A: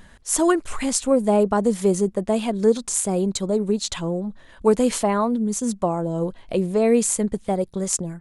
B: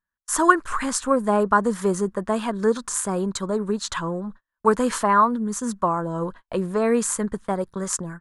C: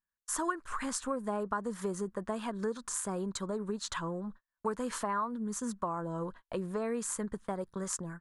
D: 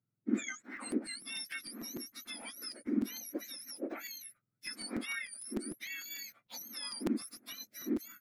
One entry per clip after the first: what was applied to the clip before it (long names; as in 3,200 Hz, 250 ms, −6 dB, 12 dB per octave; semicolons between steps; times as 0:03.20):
noise gate −34 dBFS, range −43 dB; flat-topped bell 1,300 Hz +13 dB 1.1 octaves; level −3 dB
downward compressor 3 to 1, threshold −25 dBFS, peak gain reduction 12.5 dB; level −7.5 dB
frequency axis turned over on the octave scale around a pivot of 1,500 Hz; regular buffer underruns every 0.15 s, samples 256, repeat, from 0:00.61; level −4 dB